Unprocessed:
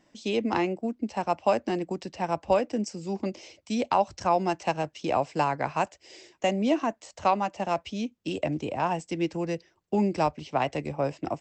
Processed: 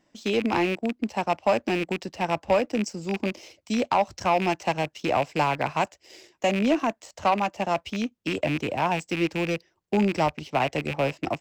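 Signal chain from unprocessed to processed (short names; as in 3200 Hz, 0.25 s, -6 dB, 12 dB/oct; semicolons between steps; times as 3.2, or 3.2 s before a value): rattling part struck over -35 dBFS, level -23 dBFS; sample leveller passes 1; gain -1 dB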